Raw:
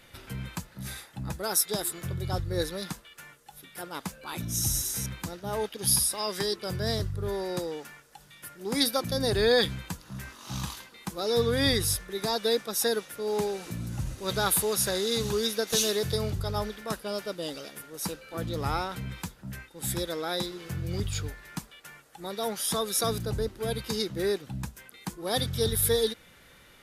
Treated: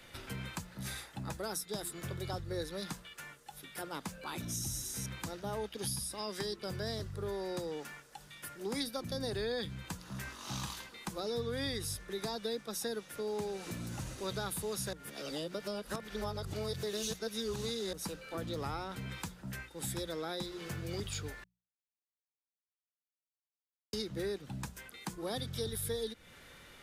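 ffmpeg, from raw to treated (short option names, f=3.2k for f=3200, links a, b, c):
-filter_complex "[0:a]asplit=5[a][b][c][d][e];[a]atrim=end=14.932[f];[b]atrim=start=14.928:end=17.932,asetpts=PTS-STARTPTS,areverse[g];[c]atrim=start=17.928:end=21.44,asetpts=PTS-STARTPTS,afade=t=out:st=3.508:d=0.004:c=hsin[h];[d]atrim=start=21.44:end=23.93,asetpts=PTS-STARTPTS,volume=0[i];[e]atrim=start=23.93,asetpts=PTS-STARTPTS,afade=t=in:d=0.004:c=hsin[j];[f][g]acrossfade=d=0.004:c1=hsin:c2=hsin[k];[h][i][j]concat=n=3:v=0:a=1[l];[k][l]acrossfade=d=0.004:c1=hsin:c2=hsin,equalizer=f=12k:t=o:w=0.31:g=-5.5,bandreject=f=60:t=h:w=6,bandreject=f=120:t=h:w=6,bandreject=f=180:t=h:w=6,acrossover=split=140|310[m][n][o];[m]acompressor=threshold=-46dB:ratio=4[p];[n]acompressor=threshold=-46dB:ratio=4[q];[o]acompressor=threshold=-39dB:ratio=4[r];[p][q][r]amix=inputs=3:normalize=0"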